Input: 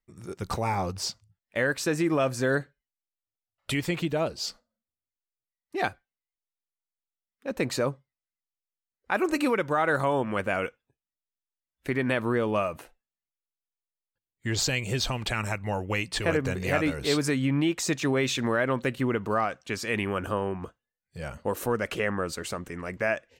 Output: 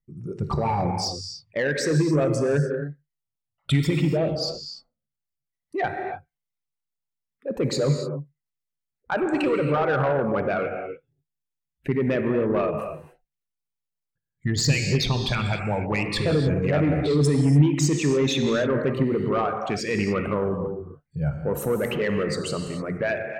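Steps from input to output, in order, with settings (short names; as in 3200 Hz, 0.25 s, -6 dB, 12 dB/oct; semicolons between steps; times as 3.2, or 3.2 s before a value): formant sharpening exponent 2; bell 1600 Hz -2.5 dB 0.31 oct; non-linear reverb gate 0.32 s flat, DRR 4.5 dB; soft clip -19.5 dBFS, distortion -17 dB; bell 150 Hz +14 dB 0.4 oct; gain +3.5 dB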